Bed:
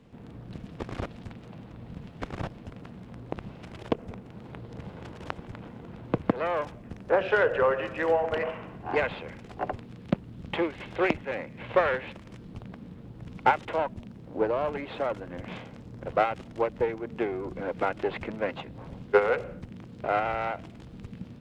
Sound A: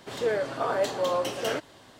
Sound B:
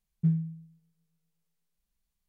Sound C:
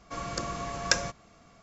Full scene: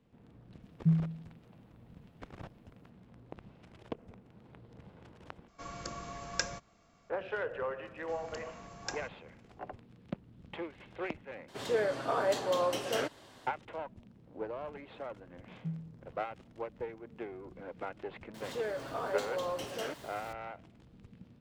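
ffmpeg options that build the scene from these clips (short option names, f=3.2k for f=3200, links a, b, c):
-filter_complex "[2:a]asplit=2[a][b];[3:a]asplit=2[c][d];[1:a]asplit=2[e][f];[0:a]volume=-13dB[g];[b]highpass=170[h];[f]aeval=exprs='val(0)+0.5*0.0112*sgn(val(0))':c=same[i];[g]asplit=3[j][k][l];[j]atrim=end=5.484[m];[c]atrim=end=1.62,asetpts=PTS-STARTPTS,volume=-8.5dB[n];[k]atrim=start=7.096:end=11.484[o];[e]atrim=end=1.99,asetpts=PTS-STARTPTS,volume=-3.5dB[p];[l]atrim=start=13.466[q];[a]atrim=end=2.28,asetpts=PTS-STARTPTS,volume=-1dB,afade=t=in:d=0.004:c=hsin,afade=t=out:st=2.276:d=0.004:c=hsin,adelay=620[r];[d]atrim=end=1.62,asetpts=PTS-STARTPTS,volume=-16dB,afade=t=in:d=0.004:c=hsin,afade=t=out:st=1.616:d=0.004:c=hsin,adelay=7970[s];[h]atrim=end=2.28,asetpts=PTS-STARTPTS,volume=-9.5dB,afade=t=in:d=0.004:c=hsin,afade=t=out:st=2.276:d=0.004:c=hsin,adelay=15410[t];[i]atrim=end=1.99,asetpts=PTS-STARTPTS,volume=-10dB,afade=t=in:d=0.004:c=hsin,afade=t=out:st=1.986:d=0.004:c=hsin,adelay=18340[u];[m][n]acrossfade=d=0.004:c1=hsin:c2=hsin[v];[v][o]acrossfade=d=0.004:c1=hsin:c2=hsin[w];[w][p]acrossfade=d=0.004:c1=hsin:c2=hsin[x];[x][q]acrossfade=d=0.004:c1=hsin:c2=hsin[y];[y][r][s][t][u]amix=inputs=5:normalize=0"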